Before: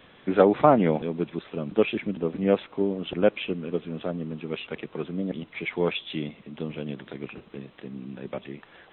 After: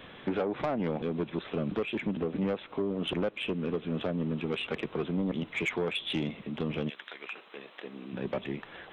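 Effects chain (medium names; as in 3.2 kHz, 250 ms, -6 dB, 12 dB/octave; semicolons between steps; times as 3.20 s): 6.88–8.12 s: high-pass 1.5 kHz -> 360 Hz 12 dB/octave; compression 8:1, threshold -28 dBFS, peak gain reduction 16.5 dB; saturation -27.5 dBFS, distortion -13 dB; trim +4.5 dB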